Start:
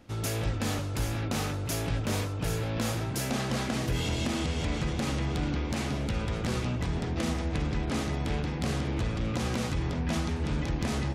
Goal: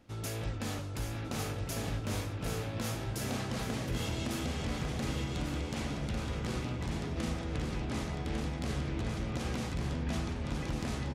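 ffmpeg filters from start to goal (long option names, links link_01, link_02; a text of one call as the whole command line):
ffmpeg -i in.wav -af "aecho=1:1:1150|2300|3450|4600:0.596|0.167|0.0467|0.0131,volume=-6.5dB" out.wav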